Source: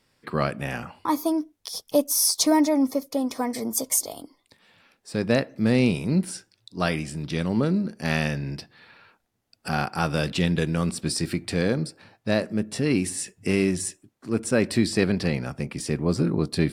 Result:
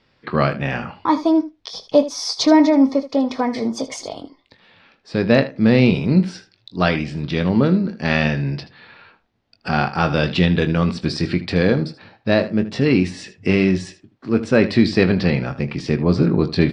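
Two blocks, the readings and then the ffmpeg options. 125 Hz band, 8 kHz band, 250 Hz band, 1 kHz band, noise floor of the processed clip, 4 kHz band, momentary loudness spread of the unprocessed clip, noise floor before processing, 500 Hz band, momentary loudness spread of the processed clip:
+7.0 dB, can't be measured, +7.0 dB, +6.5 dB, −62 dBFS, +4.5 dB, 12 LU, −72 dBFS, +7.0 dB, 11 LU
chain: -filter_complex "[0:a]lowpass=frequency=4600:width=0.5412,lowpass=frequency=4600:width=1.3066,asplit=2[link_01][link_02];[link_02]aecho=0:1:22|78:0.282|0.178[link_03];[link_01][link_03]amix=inputs=2:normalize=0,volume=6.5dB"

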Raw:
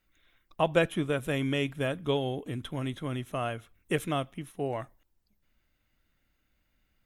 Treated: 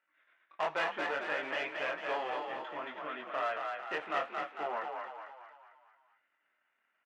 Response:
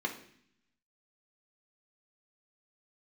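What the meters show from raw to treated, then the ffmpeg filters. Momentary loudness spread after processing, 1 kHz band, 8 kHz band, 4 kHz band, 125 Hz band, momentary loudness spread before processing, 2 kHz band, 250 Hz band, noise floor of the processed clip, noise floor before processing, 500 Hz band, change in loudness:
9 LU, +1.5 dB, below −10 dB, −5.5 dB, −30.0 dB, 9 LU, +1.0 dB, −16.5 dB, −79 dBFS, −75 dBFS, −7.0 dB, −5.0 dB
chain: -filter_complex "[0:a]aeval=exprs='if(lt(val(0),0),0.251*val(0),val(0))':channel_layout=same,flanger=delay=19.5:depth=5.8:speed=0.67,lowpass=2700,equalizer=frequency=1400:width=0.61:gain=11,asplit=2[link_01][link_02];[link_02]adelay=13,volume=-12dB[link_03];[link_01][link_03]amix=inputs=2:normalize=0,asoftclip=type=hard:threshold=-25dB,highpass=560,aemphasis=mode=reproduction:type=50fm,asplit=7[link_04][link_05][link_06][link_07][link_08][link_09][link_10];[link_05]adelay=224,afreqshift=41,volume=-4dB[link_11];[link_06]adelay=448,afreqshift=82,volume=-10dB[link_12];[link_07]adelay=672,afreqshift=123,volume=-16dB[link_13];[link_08]adelay=896,afreqshift=164,volume=-22.1dB[link_14];[link_09]adelay=1120,afreqshift=205,volume=-28.1dB[link_15];[link_10]adelay=1344,afreqshift=246,volume=-34.1dB[link_16];[link_04][link_11][link_12][link_13][link_14][link_15][link_16]amix=inputs=7:normalize=0,asplit=2[link_17][link_18];[1:a]atrim=start_sample=2205,highshelf=frequency=2600:gain=11.5[link_19];[link_18][link_19]afir=irnorm=-1:irlink=0,volume=-19dB[link_20];[link_17][link_20]amix=inputs=2:normalize=0"

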